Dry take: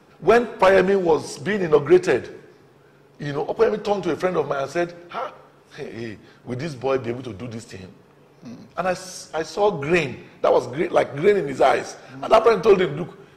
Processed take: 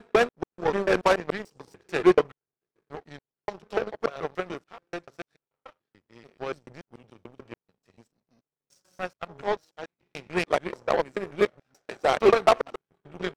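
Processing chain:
slices reordered back to front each 145 ms, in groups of 4
power curve on the samples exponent 2

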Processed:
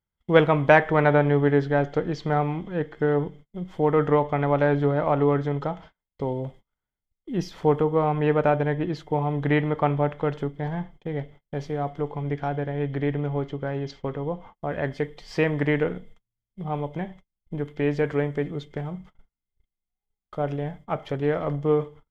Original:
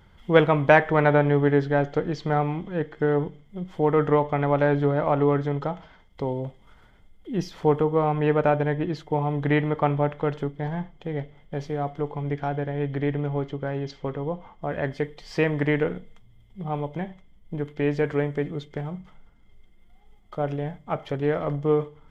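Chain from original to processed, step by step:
noise gate −44 dBFS, range −34 dB

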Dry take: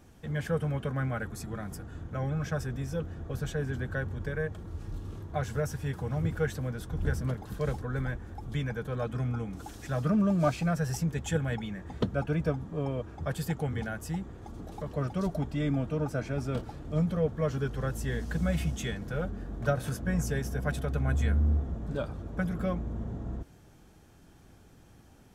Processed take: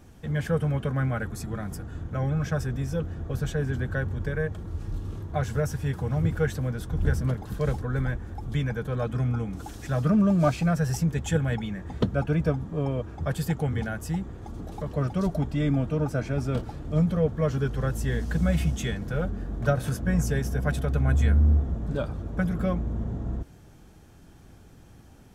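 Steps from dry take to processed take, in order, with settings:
low-shelf EQ 200 Hz +3.5 dB
level +3 dB

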